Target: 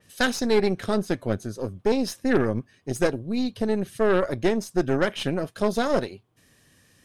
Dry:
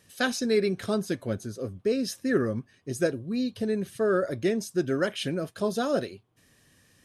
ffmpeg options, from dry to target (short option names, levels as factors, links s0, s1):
-af "aeval=exprs='0.266*(cos(1*acos(clip(val(0)/0.266,-1,1)))-cos(1*PI/2))+0.0168*(cos(5*acos(clip(val(0)/0.266,-1,1)))-cos(5*PI/2))+0.0335*(cos(6*acos(clip(val(0)/0.266,-1,1)))-cos(6*PI/2))+0.0106*(cos(7*acos(clip(val(0)/0.266,-1,1)))-cos(7*PI/2))':c=same,adynamicequalizer=threshold=0.00562:dfrequency=4000:dqfactor=0.7:tfrequency=4000:tqfactor=0.7:attack=5:release=100:ratio=0.375:range=2.5:mode=cutabove:tftype=highshelf,volume=1.26"